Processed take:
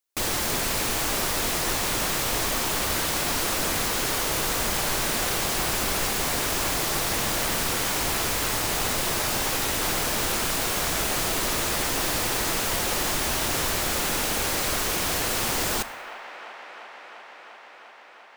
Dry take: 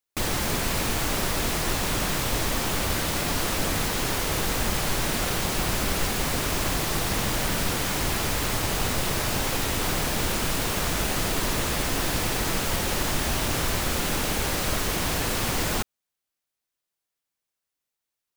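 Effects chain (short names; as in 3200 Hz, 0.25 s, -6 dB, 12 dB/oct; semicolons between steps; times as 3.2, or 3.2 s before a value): tone controls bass -6 dB, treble +3 dB; band-limited delay 0.347 s, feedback 82%, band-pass 1200 Hz, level -10.5 dB; two-slope reverb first 0.85 s, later 2.7 s, from -25 dB, DRR 14.5 dB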